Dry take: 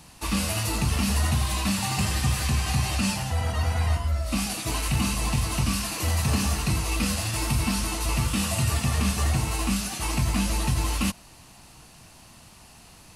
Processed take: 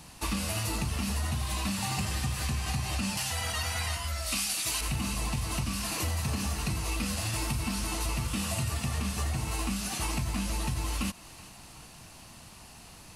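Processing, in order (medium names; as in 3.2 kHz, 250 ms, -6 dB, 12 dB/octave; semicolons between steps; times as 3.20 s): 3.17–4.81 s: tilt shelf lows -8.5 dB, about 1.2 kHz; compression, threshold -28 dBFS, peak gain reduction 9 dB; thinning echo 377 ms, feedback 62%, level -18.5 dB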